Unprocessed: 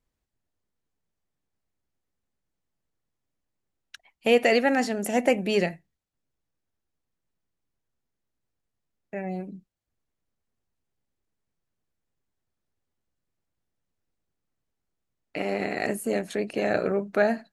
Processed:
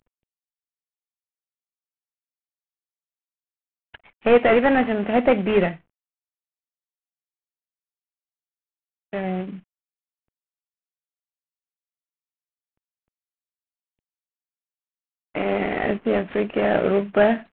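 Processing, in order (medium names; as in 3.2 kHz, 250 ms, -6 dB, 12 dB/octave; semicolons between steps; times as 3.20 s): CVSD coder 16 kbps; trim +6.5 dB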